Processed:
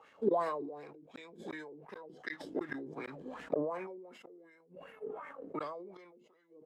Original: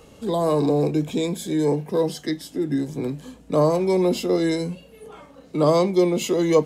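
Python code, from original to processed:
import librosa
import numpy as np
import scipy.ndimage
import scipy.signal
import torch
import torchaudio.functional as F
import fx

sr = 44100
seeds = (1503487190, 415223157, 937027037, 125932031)

y = fx.law_mismatch(x, sr, coded='A')
y = fx.peak_eq(y, sr, hz=4300.0, db=-12.0, octaves=1.1, at=(3.53, 5.6))
y = fx.gate_flip(y, sr, shuts_db=-18.0, range_db=-41)
y = fx.wah_lfo(y, sr, hz=2.7, low_hz=330.0, high_hz=1900.0, q=3.8)
y = fx.sustainer(y, sr, db_per_s=42.0)
y = y * librosa.db_to_amplitude(7.0)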